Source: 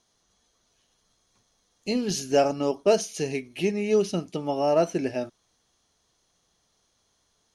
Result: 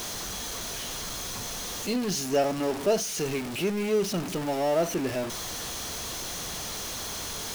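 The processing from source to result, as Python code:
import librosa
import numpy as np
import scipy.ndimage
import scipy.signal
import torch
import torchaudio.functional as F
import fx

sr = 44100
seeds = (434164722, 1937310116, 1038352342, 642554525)

y = x + 0.5 * 10.0 ** (-23.5 / 20.0) * np.sign(x)
y = F.gain(torch.from_numpy(y), -5.5).numpy()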